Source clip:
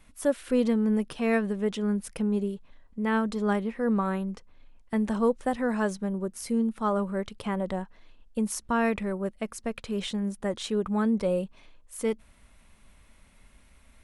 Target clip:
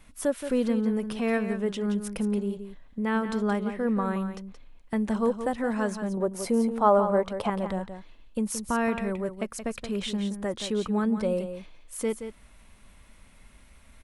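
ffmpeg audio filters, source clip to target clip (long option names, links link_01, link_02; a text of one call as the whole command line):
ffmpeg -i in.wav -filter_complex "[0:a]asettb=1/sr,asplit=3[link_01][link_02][link_03];[link_01]atrim=end=6.174[link_04];[link_02]atrim=start=6.17:end=7.5,asetpts=PTS-STARTPTS,afade=type=in:duration=0.004:curve=qsin,afade=type=out:start_time=1.326:duration=0.004:curve=qsin,equalizer=frequency=720:width_type=o:width=1.6:gain=13.5[link_05];[link_03]atrim=start=7.496[link_06];[link_04][link_05]acrossfade=duration=0.004:curve1=hsin:curve2=qsin[link_07];[link_07][link_06]acrossfade=duration=0.004:curve1=qsin:curve2=hsin,asplit=2[link_08][link_09];[link_09]acompressor=threshold=-33dB:ratio=6,volume=0.5dB[link_10];[link_08][link_10]amix=inputs=2:normalize=0,aecho=1:1:174:0.335,volume=-3.5dB" out.wav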